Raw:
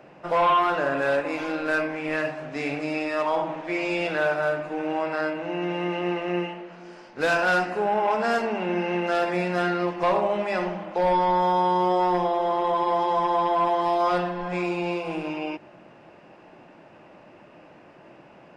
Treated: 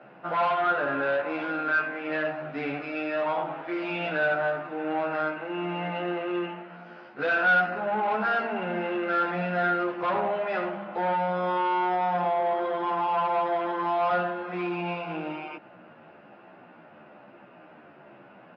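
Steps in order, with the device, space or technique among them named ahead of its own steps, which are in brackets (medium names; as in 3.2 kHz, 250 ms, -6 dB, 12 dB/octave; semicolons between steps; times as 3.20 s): barber-pole flanger into a guitar amplifier (endless flanger 11.7 ms -1.1 Hz; saturation -23 dBFS, distortion -14 dB; cabinet simulation 99–3800 Hz, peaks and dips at 220 Hz +4 dB, 730 Hz +4 dB, 1.4 kHz +9 dB)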